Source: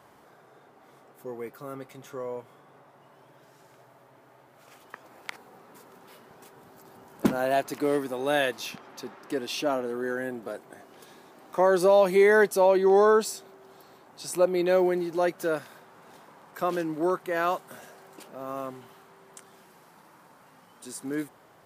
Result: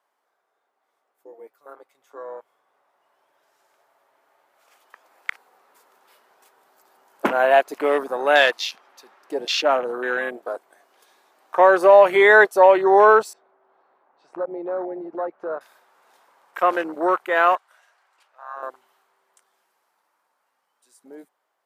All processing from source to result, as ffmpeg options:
ffmpeg -i in.wav -filter_complex "[0:a]asettb=1/sr,asplit=3[link_01][link_02][link_03];[link_01]atrim=end=13.334[link_04];[link_02]atrim=start=13.33:end=15.61,asetpts=PTS-STARTPTS,afade=type=in:duration=0.004:curve=qsin,afade=type=out:start_time=2.276:duration=0.004:curve=qsin,lowpass=1400,acompressor=threshold=-32dB:ratio=3:attack=3.2:release=140:knee=1:detection=peak[link_05];[link_03]atrim=start=15.606[link_06];[link_04][link_05]acrossfade=duration=0.004:curve1=hsin:curve2=qsin[link_07];[link_07][link_06]acrossfade=duration=0.004:curve1=qsin:curve2=hsin,asettb=1/sr,asplit=3[link_08][link_09][link_10];[link_08]atrim=end=17.554[link_11];[link_09]atrim=start=17.55:end=18.63,asetpts=PTS-STARTPTS,afade=type=in:duration=0.004:curve=qsin,afade=type=out:start_time=1.076:duration=0.004:curve=qsin,highpass=1100,aemphasis=mode=reproduction:type=bsi[link_12];[link_10]atrim=start=18.626[link_13];[link_11][link_12]acrossfade=duration=0.004:curve1=hsin:curve2=qsin[link_14];[link_14][link_13]acrossfade=duration=0.004:curve1=qsin:curve2=hsin,highpass=620,afwtdn=0.0126,dynaudnorm=framelen=220:gausssize=31:maxgain=14.5dB" out.wav

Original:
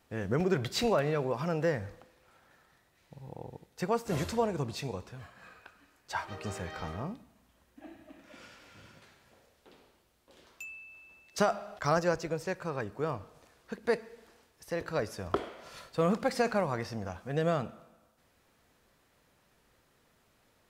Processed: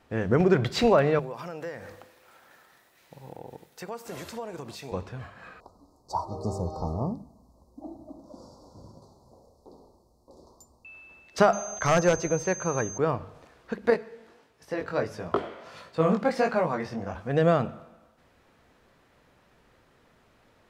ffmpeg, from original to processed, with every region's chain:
ffmpeg -i in.wav -filter_complex "[0:a]asettb=1/sr,asplit=3[link_01][link_02][link_03];[link_01]atrim=end=1.194[link_04];[link_02]atrim=start=1.19:end=4.92,asetpts=PTS-STARTPTS,afade=type=in:duration=0.004:curve=qsin,afade=type=out:start_time=3.726:duration=0.004:curve=qsin,aemphasis=mode=production:type=bsi,acompressor=threshold=-44dB:ratio=3:attack=3.2:release=140:knee=1:detection=peak[link_05];[link_03]atrim=start=4.916[link_06];[link_04][link_05]acrossfade=duration=0.004:curve1=hsin:curve2=qsin[link_07];[link_07][link_06]acrossfade=duration=0.004:curve1=qsin:curve2=hsin,asettb=1/sr,asplit=3[link_08][link_09][link_10];[link_08]atrim=end=5.604[link_11];[link_09]atrim=start=5.6:end=10.85,asetpts=PTS-STARTPTS,afade=type=in:duration=0.004:curve=qsin,afade=type=out:start_time=5.246:duration=0.004:curve=qsin,asuperstop=centerf=2200:order=12:qfactor=0.67,lowshelf=frequency=130:gain=4[link_12];[link_10]atrim=start=10.846[link_13];[link_11][link_12]acrossfade=duration=0.004:curve1=hsin:curve2=qsin[link_14];[link_14][link_13]acrossfade=duration=0.004:curve1=qsin:curve2=hsin,asettb=1/sr,asplit=3[link_15][link_16][link_17];[link_15]atrim=end=11.534[link_18];[link_16]atrim=start=11.53:end=12.98,asetpts=PTS-STARTPTS,afade=type=in:duration=0.004:curve=qsin,afade=type=out:start_time=1.446:duration=0.004:curve=qsin,aeval=exprs='val(0)+0.0141*sin(2*PI*6300*n/s)':channel_layout=same,aeval=exprs='0.0944*(abs(mod(val(0)/0.0944+3,4)-2)-1)':channel_layout=same[link_19];[link_17]atrim=start=12.976[link_20];[link_18][link_19]acrossfade=duration=0.004:curve1=hsin:curve2=qsin[link_21];[link_21][link_20]acrossfade=duration=0.004:curve1=qsin:curve2=hsin,asettb=1/sr,asplit=3[link_22][link_23][link_24];[link_22]atrim=end=13.904[link_25];[link_23]atrim=start=13.9:end=17.15,asetpts=PTS-STARTPTS,afade=type=in:duration=0.004:curve=qsin,afade=type=out:start_time=3.246:duration=0.004:curve=qsin,highpass=79,flanger=delay=17.5:depth=5:speed=1.5[link_26];[link_24]atrim=start=17.146[link_27];[link_25][link_26]acrossfade=duration=0.004:curve1=hsin:curve2=qsin[link_28];[link_28][link_27]acrossfade=duration=0.004:curve1=qsin:curve2=hsin,lowpass=frequency=2600:poles=1,bandreject=frequency=50:width_type=h:width=6,bandreject=frequency=100:width_type=h:width=6,bandreject=frequency=150:width_type=h:width=6,bandreject=frequency=200:width_type=h:width=6,volume=8dB" out.wav

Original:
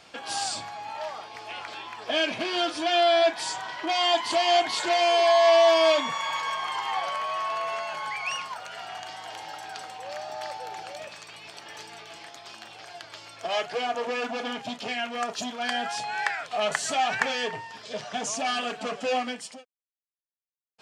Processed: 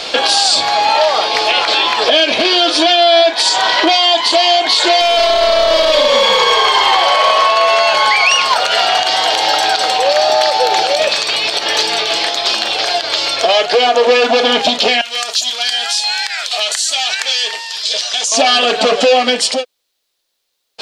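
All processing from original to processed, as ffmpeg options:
ffmpeg -i in.wav -filter_complex "[0:a]asettb=1/sr,asplit=3[link_01][link_02][link_03];[link_01]atrim=end=5.004[link_04];[link_02]atrim=start=5:end=7.47,asetpts=PTS-STARTPTS,afade=type=in:duration=0.004:curve=qsin,afade=type=out:start_time=2.466:duration=0.004:curve=qsin,asplit=8[link_05][link_06][link_07][link_08][link_09][link_10][link_11][link_12];[link_06]adelay=157,afreqshift=-39,volume=-7dB[link_13];[link_07]adelay=314,afreqshift=-78,volume=-11.9dB[link_14];[link_08]adelay=471,afreqshift=-117,volume=-16.8dB[link_15];[link_09]adelay=628,afreqshift=-156,volume=-21.6dB[link_16];[link_10]adelay=785,afreqshift=-195,volume=-26.5dB[link_17];[link_11]adelay=942,afreqshift=-234,volume=-31.4dB[link_18];[link_12]adelay=1099,afreqshift=-273,volume=-36.3dB[link_19];[link_05][link_13][link_14][link_15][link_16][link_17][link_18][link_19]amix=inputs=8:normalize=0,atrim=end_sample=108927,aeval=exprs='clip(val(0),-1,0.0708)':channel_layout=same[link_20];[link_03]atrim=start=7.466[link_21];[link_04][link_20]acrossfade=duration=0.004:curve1=hsin:curve2=qsin[link_22];[link_22][link_21]acrossfade=duration=0.004:curve1=qsin:curve2=hsin,asettb=1/sr,asplit=3[link_23][link_24][link_25];[link_23]atrim=end=15.014[link_26];[link_24]atrim=start=15.01:end=18.32,asetpts=PTS-STARTPTS,afade=type=in:duration=0.004:curve=qsin,afade=type=out:start_time=3.306:duration=0.004:curve=qsin,aderivative,acompressor=threshold=-42dB:ratio=4:attack=3.2:release=140:knee=1:detection=peak[link_27];[link_25]atrim=start=18.316[link_28];[link_26][link_27]acrossfade=duration=0.004:curve1=hsin:curve2=qsin[link_29];[link_29][link_28]acrossfade=duration=0.004:curve1=qsin:curve2=hsin,equalizer=frequency=125:width_type=o:width=1:gain=-11,equalizer=frequency=500:width_type=o:width=1:gain=8,equalizer=frequency=4000:width_type=o:width=1:gain=12,acompressor=threshold=-30dB:ratio=4,alimiter=level_in=23.5dB:limit=-1dB:release=50:level=0:latency=1,volume=-1dB" out.wav

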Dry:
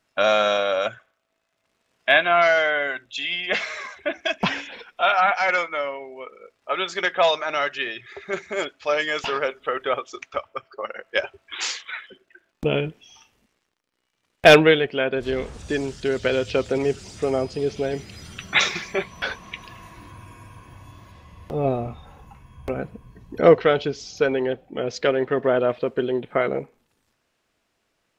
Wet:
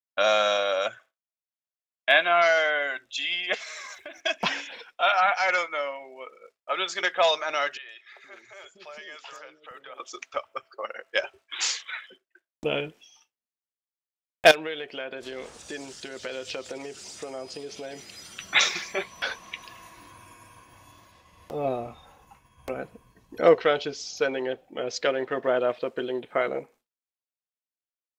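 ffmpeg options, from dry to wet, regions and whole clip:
ffmpeg -i in.wav -filter_complex "[0:a]asettb=1/sr,asplit=3[link_01][link_02][link_03];[link_01]atrim=end=3.544[link_04];[link_02]atrim=start=3.54:end=4.21,asetpts=PTS-STARTPTS,afade=type=in:duration=0.004:curve=qsin,afade=type=out:start_time=0.666:duration=0.004:curve=qsin,aemphasis=mode=production:type=50kf,acompressor=threshold=-33dB:ratio=8:attack=3.2:release=140:knee=1:detection=peak[link_05];[link_03]atrim=start=4.206[link_06];[link_04][link_05]acrossfade=duration=0.004:curve1=hsin:curve2=qsin[link_07];[link_07][link_06]acrossfade=duration=0.004:curve1=qsin:curve2=hsin,asettb=1/sr,asplit=3[link_08][link_09][link_10];[link_08]atrim=end=7.774[link_11];[link_09]atrim=start=7.77:end=10,asetpts=PTS-STARTPTS,afade=type=in:duration=0.004:curve=qsin,afade=type=out:start_time=2.226:duration=0.004:curve=qsin,acompressor=threshold=-40dB:ratio=3:attack=3.2:release=140:knee=1:detection=peak,acrossover=split=460|5200[link_12][link_13][link_14];[link_14]adelay=120[link_15];[link_12]adelay=470[link_16];[link_16][link_13][link_15]amix=inputs=3:normalize=0,atrim=end_sample=98343[link_17];[link_10]atrim=start=9.996[link_18];[link_11][link_17]acrossfade=duration=0.004:curve1=hsin:curve2=qsin[link_19];[link_19][link_18]acrossfade=duration=0.004:curve1=qsin:curve2=hsin,asettb=1/sr,asplit=3[link_20][link_21][link_22];[link_20]atrim=end=14.514[link_23];[link_21]atrim=start=14.51:end=18.4,asetpts=PTS-STARTPTS,afade=type=in:duration=0.004:curve=qsin,afade=type=out:start_time=3.886:duration=0.004:curve=qsin,lowshelf=frequency=97:gain=-11,acompressor=threshold=-27dB:ratio=4:attack=3.2:release=140:knee=1:detection=peak[link_24];[link_22]atrim=start=18.396[link_25];[link_23][link_24]acrossfade=duration=0.004:curve1=hsin:curve2=qsin[link_26];[link_26][link_25]acrossfade=duration=0.004:curve1=qsin:curve2=hsin,agate=range=-33dB:threshold=-43dB:ratio=3:detection=peak,bass=frequency=250:gain=-11,treble=frequency=4000:gain=6,bandreject=frequency=410:width=12,volume=-3dB" out.wav

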